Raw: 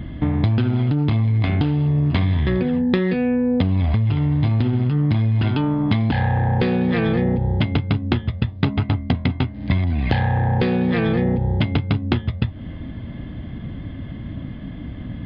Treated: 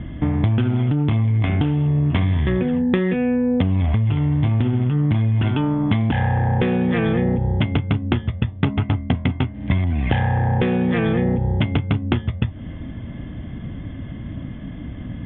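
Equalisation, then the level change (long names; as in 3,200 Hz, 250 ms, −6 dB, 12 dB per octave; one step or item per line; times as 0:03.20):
Butterworth low-pass 3,500 Hz 96 dB per octave
0.0 dB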